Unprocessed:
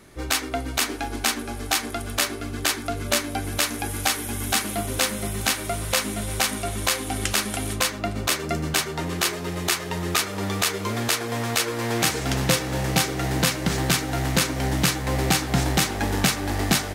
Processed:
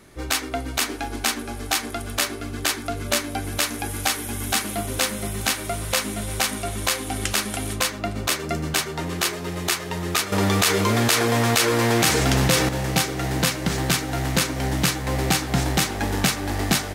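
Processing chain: 10.32–12.69 fast leveller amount 70%

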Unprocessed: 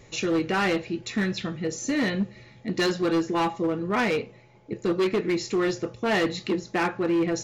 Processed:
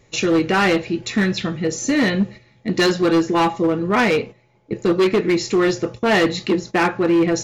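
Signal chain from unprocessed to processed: gate -39 dBFS, range -11 dB; gain +7.5 dB

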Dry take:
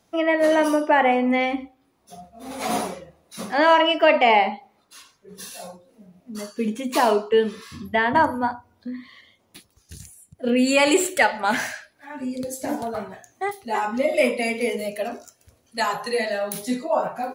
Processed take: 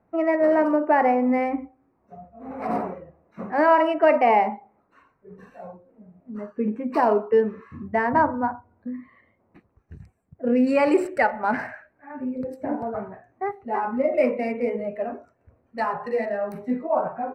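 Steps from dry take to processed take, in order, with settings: Wiener smoothing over 9 samples; running mean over 13 samples

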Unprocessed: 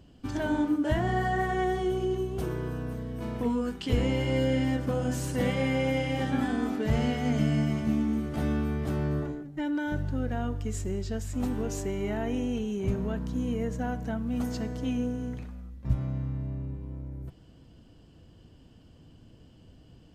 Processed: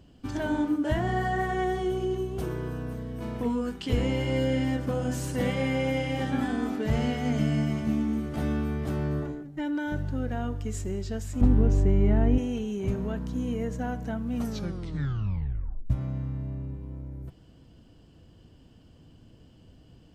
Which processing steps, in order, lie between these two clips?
11.41–12.38 RIAA curve playback; 14.35 tape stop 1.55 s

